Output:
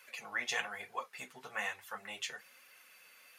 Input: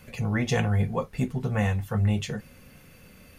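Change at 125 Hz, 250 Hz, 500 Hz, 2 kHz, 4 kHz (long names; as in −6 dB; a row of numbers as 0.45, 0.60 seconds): below −40 dB, −30.0 dB, −17.0 dB, −2.5 dB, −2.5 dB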